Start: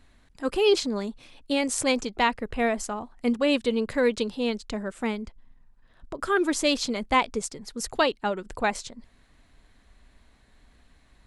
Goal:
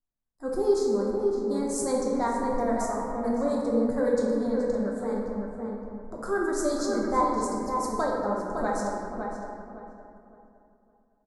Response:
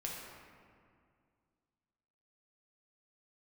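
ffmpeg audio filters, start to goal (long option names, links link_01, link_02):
-filter_complex "[0:a]agate=range=-30dB:threshold=-49dB:ratio=16:detection=peak,acrossover=split=630[link_01][link_02];[link_01]aeval=exprs='val(0)*(1-0.5/2+0.5/2*cos(2*PI*8.7*n/s))':channel_layout=same[link_03];[link_02]aeval=exprs='val(0)*(1-0.5/2-0.5/2*cos(2*PI*8.7*n/s))':channel_layout=same[link_04];[link_03][link_04]amix=inputs=2:normalize=0,acontrast=79,asuperstop=centerf=2800:order=4:qfactor=0.72,asplit=2[link_05][link_06];[link_06]adelay=561,lowpass=frequency=1600:poles=1,volume=-4dB,asplit=2[link_07][link_08];[link_08]adelay=561,lowpass=frequency=1600:poles=1,volume=0.3,asplit=2[link_09][link_10];[link_10]adelay=561,lowpass=frequency=1600:poles=1,volume=0.3,asplit=2[link_11][link_12];[link_12]adelay=561,lowpass=frequency=1600:poles=1,volume=0.3[link_13];[link_05][link_07][link_09][link_11][link_13]amix=inputs=5:normalize=0[link_14];[1:a]atrim=start_sample=2205[link_15];[link_14][link_15]afir=irnorm=-1:irlink=0,volume=-6.5dB"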